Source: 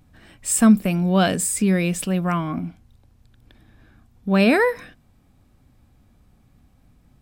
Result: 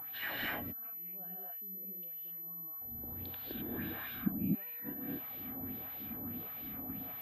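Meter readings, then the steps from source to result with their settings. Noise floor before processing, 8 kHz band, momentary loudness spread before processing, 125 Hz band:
-58 dBFS, under -40 dB, 16 LU, -20.5 dB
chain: compression 1.5:1, threshold -41 dBFS, peak gain reduction 11.5 dB; inverted gate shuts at -31 dBFS, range -42 dB; LFO band-pass sine 1.6 Hz 240–3400 Hz; gated-style reverb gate 280 ms rising, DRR -4.5 dB; class-D stage that switches slowly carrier 12 kHz; trim +16.5 dB

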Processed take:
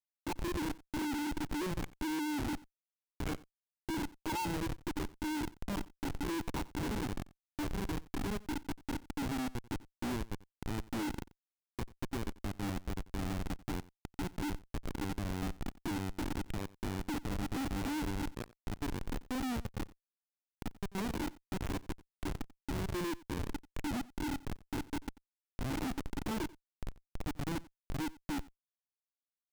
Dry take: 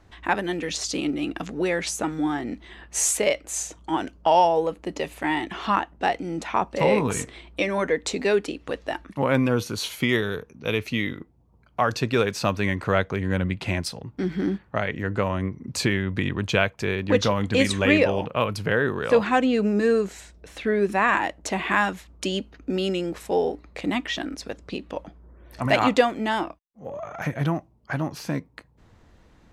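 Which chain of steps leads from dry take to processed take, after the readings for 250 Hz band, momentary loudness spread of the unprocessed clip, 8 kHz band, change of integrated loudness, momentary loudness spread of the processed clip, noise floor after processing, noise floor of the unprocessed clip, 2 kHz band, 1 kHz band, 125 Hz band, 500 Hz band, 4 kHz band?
-11.0 dB, 11 LU, -17.5 dB, -15.0 dB, 8 LU, under -85 dBFS, -57 dBFS, -18.5 dB, -17.0 dB, -11.5 dB, -21.0 dB, -15.0 dB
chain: Chebyshev band-stop 460–990 Hz, order 2; dynamic bell 130 Hz, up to +7 dB, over -46 dBFS, Q 4.5; compression 2.5:1, threshold -43 dBFS, peak gain reduction 18.5 dB; saturation -29 dBFS, distortion -20 dB; vowel filter u; Schmitt trigger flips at -49 dBFS; delay 90 ms -21 dB; trim +16 dB

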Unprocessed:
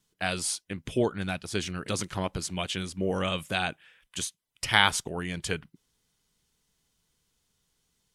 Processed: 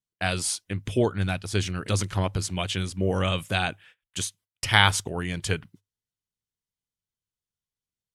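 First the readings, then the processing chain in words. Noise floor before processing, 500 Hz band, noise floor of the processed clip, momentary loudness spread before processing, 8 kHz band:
-77 dBFS, +2.5 dB, under -85 dBFS, 11 LU, +2.5 dB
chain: gate -54 dBFS, range -24 dB; peaking EQ 100 Hz +11.5 dB 0.29 oct; trim +2.5 dB

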